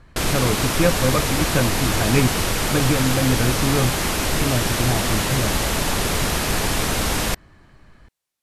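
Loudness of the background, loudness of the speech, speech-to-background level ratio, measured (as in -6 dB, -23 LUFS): -21.5 LUFS, -23.5 LUFS, -2.0 dB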